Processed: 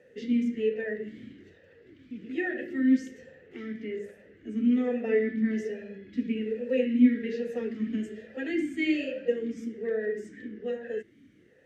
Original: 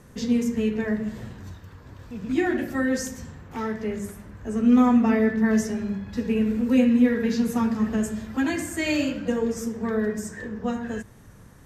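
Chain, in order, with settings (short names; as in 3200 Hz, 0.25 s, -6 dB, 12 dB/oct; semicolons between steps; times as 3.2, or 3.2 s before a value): vowel sweep e-i 1.2 Hz; gain +6 dB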